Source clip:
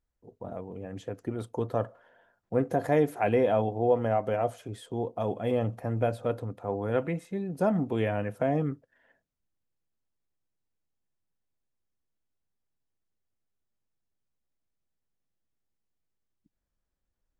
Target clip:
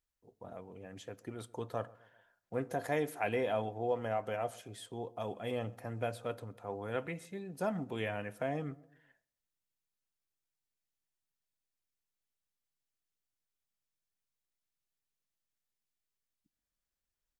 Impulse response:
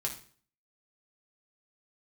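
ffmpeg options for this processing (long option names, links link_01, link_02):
-filter_complex "[0:a]tiltshelf=frequency=1200:gain=-6,asplit=2[link_01][link_02];[link_02]adelay=130,lowpass=frequency=1300:poles=1,volume=-22dB,asplit=2[link_03][link_04];[link_04]adelay=130,lowpass=frequency=1300:poles=1,volume=0.49,asplit=2[link_05][link_06];[link_06]adelay=130,lowpass=frequency=1300:poles=1,volume=0.49[link_07];[link_01][link_03][link_05][link_07]amix=inputs=4:normalize=0,asplit=2[link_08][link_09];[1:a]atrim=start_sample=2205[link_10];[link_09][link_10]afir=irnorm=-1:irlink=0,volume=-20.5dB[link_11];[link_08][link_11]amix=inputs=2:normalize=0,volume=-6dB"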